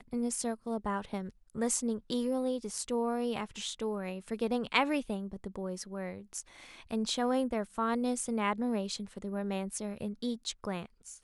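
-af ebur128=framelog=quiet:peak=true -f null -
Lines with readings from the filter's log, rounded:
Integrated loudness:
  I:         -34.3 LUFS
  Threshold: -44.5 LUFS
Loudness range:
  LRA:         2.0 LU
  Threshold: -54.1 LUFS
  LRA low:   -35.2 LUFS
  LRA high:  -33.2 LUFS
True peak:
  Peak:      -10.8 dBFS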